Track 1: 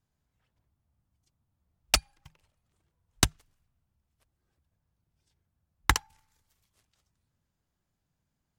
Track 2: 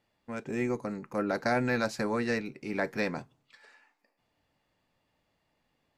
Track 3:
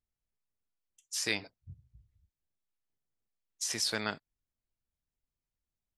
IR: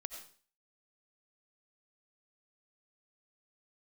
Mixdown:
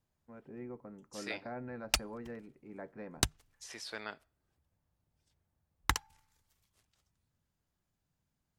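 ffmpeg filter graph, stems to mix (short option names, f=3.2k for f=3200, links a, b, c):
-filter_complex "[0:a]acompressor=threshold=-26dB:ratio=2,volume=-2.5dB[a];[1:a]lowpass=1.3k,volume=-15dB,asplit=2[b][c];[c]volume=-17.5dB[d];[2:a]bass=f=250:g=-10,treble=f=4k:g=-10,volume=-7.5dB,asplit=2[e][f];[f]volume=-23.5dB[g];[3:a]atrim=start_sample=2205[h];[d][g]amix=inputs=2:normalize=0[i];[i][h]afir=irnorm=-1:irlink=0[j];[a][b][e][j]amix=inputs=4:normalize=0"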